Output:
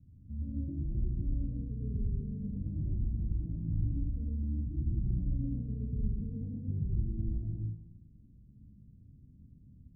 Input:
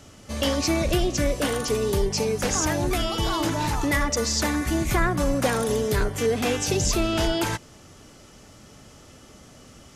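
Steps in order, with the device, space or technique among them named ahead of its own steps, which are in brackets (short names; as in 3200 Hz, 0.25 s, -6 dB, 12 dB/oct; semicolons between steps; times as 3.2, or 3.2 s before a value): club heard from the street (limiter -16 dBFS, peak gain reduction 5.5 dB; LPF 190 Hz 24 dB/oct; reverb RT60 0.80 s, pre-delay 91 ms, DRR -2 dB); gain -6 dB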